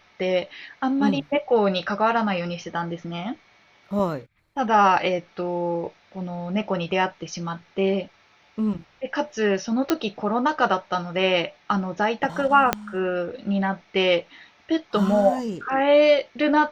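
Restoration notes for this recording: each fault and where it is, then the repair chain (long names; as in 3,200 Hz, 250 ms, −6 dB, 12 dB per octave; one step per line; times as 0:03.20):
0:09.90: click −6 dBFS
0:12.73: click −4 dBFS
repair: click removal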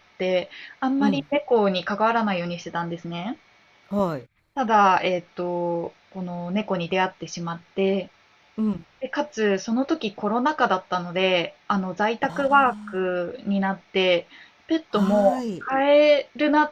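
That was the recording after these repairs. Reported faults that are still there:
0:12.73: click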